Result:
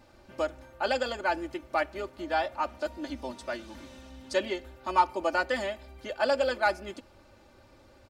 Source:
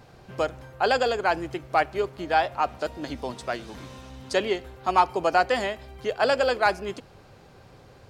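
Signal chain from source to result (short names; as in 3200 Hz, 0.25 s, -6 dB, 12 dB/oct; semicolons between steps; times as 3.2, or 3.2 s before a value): comb 3.4 ms, depth 92%; gain -7.5 dB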